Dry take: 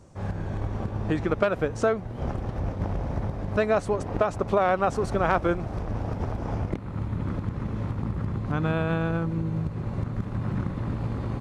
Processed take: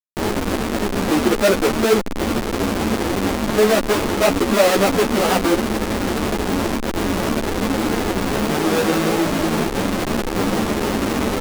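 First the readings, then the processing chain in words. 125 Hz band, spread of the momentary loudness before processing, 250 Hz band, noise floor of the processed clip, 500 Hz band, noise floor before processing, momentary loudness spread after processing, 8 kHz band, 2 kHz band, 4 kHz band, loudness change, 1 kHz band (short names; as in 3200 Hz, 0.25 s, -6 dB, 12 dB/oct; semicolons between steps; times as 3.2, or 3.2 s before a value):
0.0 dB, 7 LU, +11.5 dB, -24 dBFS, +9.0 dB, -36 dBFS, 6 LU, +23.0 dB, +11.0 dB, +21.5 dB, +9.0 dB, +8.0 dB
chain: Schmitt trigger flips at -29.5 dBFS; resonant low shelf 170 Hz -12 dB, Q 1.5; maximiser +23.5 dB; ensemble effect; gain -5 dB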